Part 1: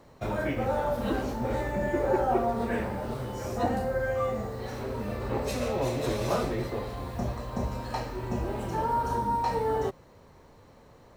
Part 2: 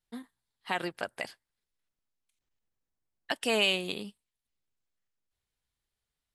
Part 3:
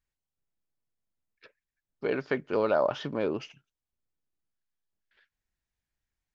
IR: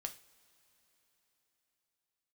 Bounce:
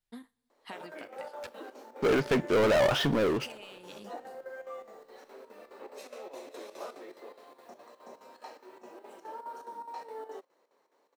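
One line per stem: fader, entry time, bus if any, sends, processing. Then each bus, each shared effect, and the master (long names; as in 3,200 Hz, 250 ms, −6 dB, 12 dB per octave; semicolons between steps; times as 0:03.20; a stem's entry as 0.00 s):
−13.0 dB, 0.50 s, no send, square-wave tremolo 4.8 Hz, depth 65%, duty 75%; high-pass filter 330 Hz 24 dB per octave
−5.0 dB, 0.00 s, send −8 dB, downward compressor, threshold −37 dBFS, peak gain reduction 15 dB; automatic ducking −13 dB, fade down 0.80 s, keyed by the third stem
0:03.12 −9 dB → 0:03.90 −21.5 dB, 0.00 s, send −6.5 dB, leveller curve on the samples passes 5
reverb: on, pre-delay 3 ms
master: no processing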